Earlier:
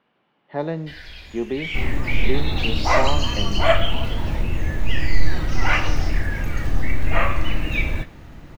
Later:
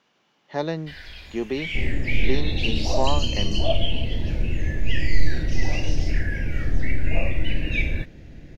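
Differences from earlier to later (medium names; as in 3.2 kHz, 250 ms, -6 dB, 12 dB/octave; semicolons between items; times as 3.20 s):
speech: remove distance through air 400 m; second sound: add inverse Chebyshev low-pass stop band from 2.7 kHz, stop band 70 dB; reverb: off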